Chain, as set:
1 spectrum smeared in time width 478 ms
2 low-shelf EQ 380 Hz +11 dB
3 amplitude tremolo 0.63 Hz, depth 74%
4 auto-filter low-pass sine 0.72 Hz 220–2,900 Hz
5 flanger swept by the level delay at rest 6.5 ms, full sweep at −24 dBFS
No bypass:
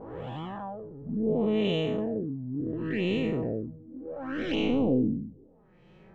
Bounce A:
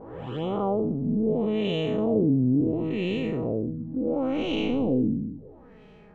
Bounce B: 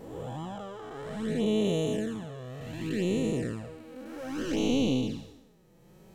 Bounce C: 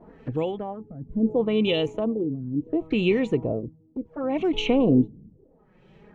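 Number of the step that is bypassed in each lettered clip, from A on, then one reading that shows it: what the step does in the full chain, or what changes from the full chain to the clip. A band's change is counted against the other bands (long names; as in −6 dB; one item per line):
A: 3, change in momentary loudness spread −5 LU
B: 4, change in integrated loudness −1.5 LU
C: 1, 4 kHz band +1.5 dB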